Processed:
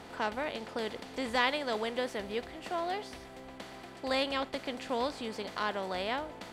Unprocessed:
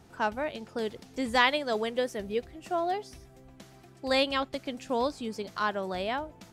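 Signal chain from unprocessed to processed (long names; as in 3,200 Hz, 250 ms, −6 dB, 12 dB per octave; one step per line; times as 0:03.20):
compressor on every frequency bin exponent 0.6
level −7 dB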